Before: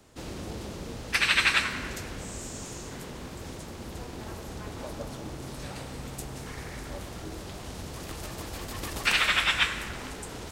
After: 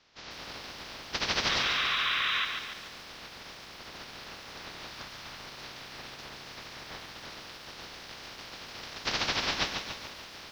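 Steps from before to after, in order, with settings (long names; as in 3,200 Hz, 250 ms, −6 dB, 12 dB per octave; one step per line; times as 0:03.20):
ceiling on every frequency bin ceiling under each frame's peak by 26 dB
Butterworth low-pass 5,600 Hz 48 dB per octave
0:01.51–0:02.42: healed spectral selection 1,000–4,000 Hz before
0:04.90–0:05.40: parametric band 410 Hz −6.5 dB 1.2 octaves
feedback echo at a low word length 142 ms, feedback 55%, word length 8 bits, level −6 dB
level −5 dB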